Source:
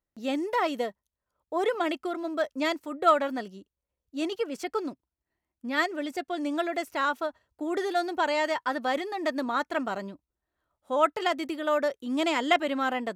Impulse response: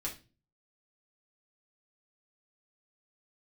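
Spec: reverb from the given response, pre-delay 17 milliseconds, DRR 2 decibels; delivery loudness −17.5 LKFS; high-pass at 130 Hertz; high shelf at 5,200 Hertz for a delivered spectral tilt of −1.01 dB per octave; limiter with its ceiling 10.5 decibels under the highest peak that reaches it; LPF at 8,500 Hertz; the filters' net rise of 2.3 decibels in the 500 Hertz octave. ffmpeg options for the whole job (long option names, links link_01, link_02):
-filter_complex "[0:a]highpass=130,lowpass=8500,equalizer=frequency=500:width_type=o:gain=3,highshelf=frequency=5200:gain=8.5,alimiter=limit=-17.5dB:level=0:latency=1,asplit=2[link_01][link_02];[1:a]atrim=start_sample=2205,adelay=17[link_03];[link_02][link_03]afir=irnorm=-1:irlink=0,volume=-3dB[link_04];[link_01][link_04]amix=inputs=2:normalize=0,volume=9dB"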